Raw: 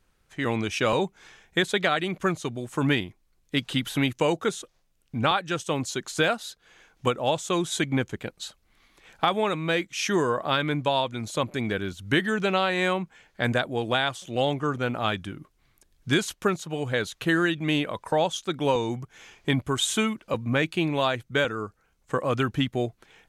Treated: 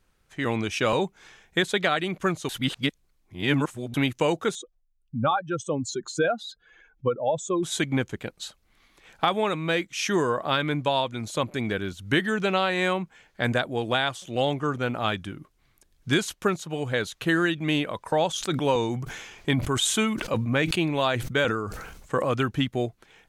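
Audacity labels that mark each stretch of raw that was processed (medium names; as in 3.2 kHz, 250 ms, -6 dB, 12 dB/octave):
2.490000	3.940000	reverse
4.550000	7.630000	spectral contrast enhancement exponent 2.1
18.270000	22.290000	decay stretcher at most 46 dB/s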